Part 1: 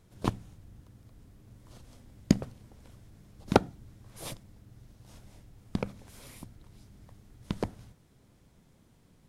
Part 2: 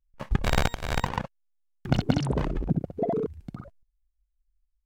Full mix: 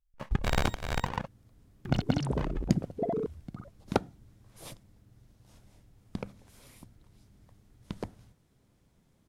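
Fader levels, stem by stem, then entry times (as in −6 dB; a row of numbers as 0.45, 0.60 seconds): −5.5, −4.0 decibels; 0.40, 0.00 seconds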